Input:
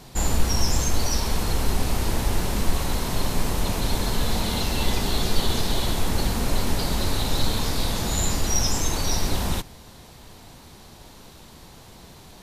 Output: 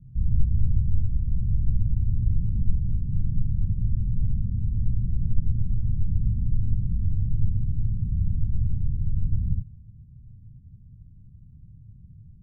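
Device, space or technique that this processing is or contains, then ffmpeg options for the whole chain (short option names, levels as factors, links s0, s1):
the neighbour's flat through the wall: -filter_complex "[0:a]asettb=1/sr,asplit=3[s0][s1][s2];[s0]atrim=end=2.194[s3];[s1]atrim=start=2.19:end=3.41,asetpts=PTS-STARTPTS,afade=t=in:d=0.004:c=qsin,afade=t=out:st=1.216:d=0.004:c=qsin,equalizer=f=690:t=o:w=2.8:g=3.5[s4];[s2]atrim=start=3.406[s5];[s3][s4]acrossfade=d=0.004:c1=hsin:c2=qsin[s6];[s6][s5]acrossfade=d=0.004:c1=qsin:c2=hsin,lowpass=f=160:w=0.5412,lowpass=f=160:w=1.3066,equalizer=f=110:t=o:w=0.84:g=7"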